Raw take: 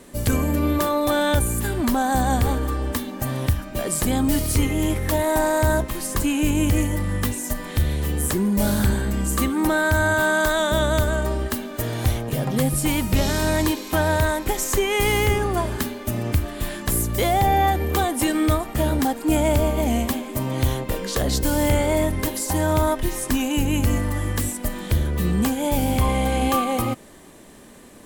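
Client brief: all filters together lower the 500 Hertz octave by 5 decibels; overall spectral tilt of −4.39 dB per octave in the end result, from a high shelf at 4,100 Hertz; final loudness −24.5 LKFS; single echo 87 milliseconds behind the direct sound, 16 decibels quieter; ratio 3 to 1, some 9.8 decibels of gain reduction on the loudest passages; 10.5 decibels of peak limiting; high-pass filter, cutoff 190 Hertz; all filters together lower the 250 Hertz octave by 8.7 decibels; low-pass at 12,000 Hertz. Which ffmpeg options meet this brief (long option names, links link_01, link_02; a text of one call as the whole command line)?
ffmpeg -i in.wav -af "highpass=190,lowpass=12000,equalizer=frequency=250:width_type=o:gain=-8,equalizer=frequency=500:width_type=o:gain=-4.5,highshelf=frequency=4100:gain=-5.5,acompressor=threshold=-33dB:ratio=3,alimiter=level_in=3.5dB:limit=-24dB:level=0:latency=1,volume=-3.5dB,aecho=1:1:87:0.158,volume=12dB" out.wav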